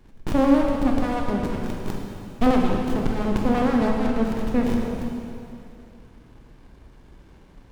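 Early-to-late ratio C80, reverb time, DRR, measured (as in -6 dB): 2.5 dB, 2.7 s, -0.5 dB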